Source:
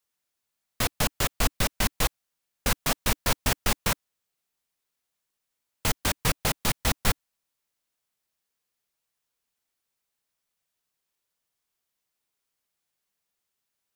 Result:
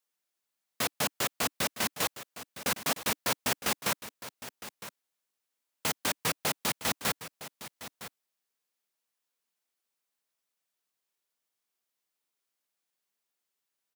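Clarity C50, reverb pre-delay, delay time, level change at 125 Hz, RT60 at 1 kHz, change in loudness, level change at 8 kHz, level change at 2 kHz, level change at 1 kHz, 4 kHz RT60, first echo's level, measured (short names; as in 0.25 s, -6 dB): none, none, 0.96 s, -12.0 dB, none, -3.5 dB, -3.0 dB, -3.0 dB, -3.0 dB, none, -14.0 dB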